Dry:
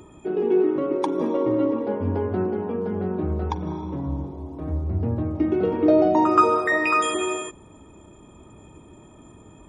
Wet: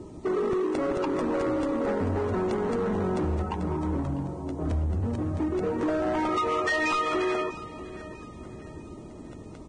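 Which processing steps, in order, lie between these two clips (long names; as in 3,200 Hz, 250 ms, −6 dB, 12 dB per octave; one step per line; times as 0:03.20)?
low-pass filter 2,600 Hz 24 dB per octave
mains-hum notches 50/100/150 Hz
low-pass that shuts in the quiet parts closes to 590 Hz, open at −18.5 dBFS
downward compressor 12 to 1, threshold −26 dBFS, peak gain reduction 15.5 dB
0:03.42–0:05.83: chorus effect 1.1 Hz, delay 20 ms, depth 5.7 ms
gain into a clipping stage and back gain 29.5 dB
hollow resonant body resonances 1,300/1,900 Hz, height 7 dB, ringing for 90 ms
bit reduction 11 bits
repeating echo 648 ms, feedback 44%, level −16.5 dB
regular buffer underruns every 0.22 s, samples 64, repeat, from 0:00.53
level +5.5 dB
Ogg Vorbis 16 kbit/s 22,050 Hz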